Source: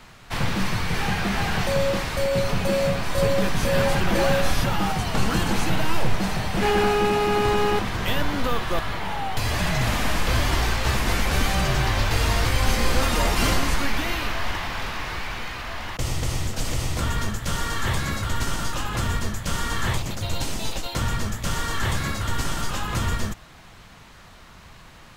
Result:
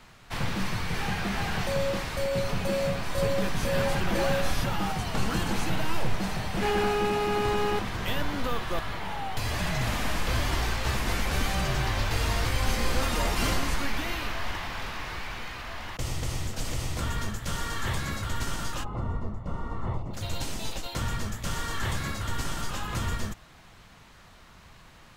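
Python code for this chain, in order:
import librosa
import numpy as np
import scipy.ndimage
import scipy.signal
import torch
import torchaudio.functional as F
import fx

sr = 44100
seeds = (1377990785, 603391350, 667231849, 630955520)

y = fx.savgol(x, sr, points=65, at=(18.83, 20.13), fade=0.02)
y = y * librosa.db_to_amplitude(-5.5)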